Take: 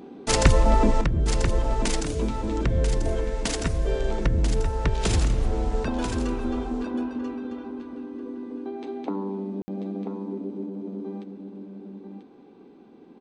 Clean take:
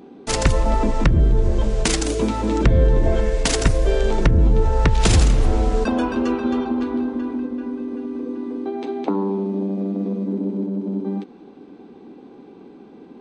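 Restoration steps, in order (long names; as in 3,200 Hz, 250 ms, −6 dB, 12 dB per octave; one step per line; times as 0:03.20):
ambience match 0:09.62–0:09.68
echo removal 989 ms −8 dB
level 0 dB, from 0:01.01 +8 dB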